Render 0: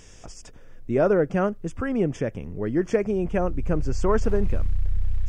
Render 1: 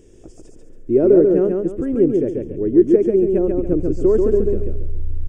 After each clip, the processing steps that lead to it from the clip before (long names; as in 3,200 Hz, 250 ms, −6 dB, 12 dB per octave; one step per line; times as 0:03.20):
drawn EQ curve 200 Hz 0 dB, 350 Hz +14 dB, 780 Hz −9 dB, 1,200 Hz −13 dB, 3,200 Hz −10 dB, 5,600 Hz −13 dB, 8,900 Hz −3 dB
on a send: repeating echo 139 ms, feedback 33%, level −3.5 dB
on the sum: level −1 dB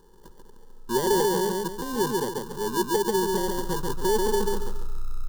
sample-rate reduction 1,300 Hz, jitter 0%
soft clipping −10.5 dBFS, distortion −14 dB
phaser with its sweep stopped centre 450 Hz, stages 8
level −4.5 dB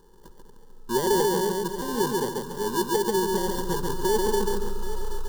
echo with a time of its own for lows and highs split 390 Hz, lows 232 ms, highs 779 ms, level −12 dB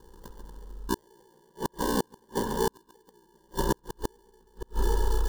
ring modulation 30 Hz
spring reverb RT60 3.6 s, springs 36/45 ms, chirp 40 ms, DRR 7.5 dB
gate with flip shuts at −17 dBFS, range −39 dB
level +5 dB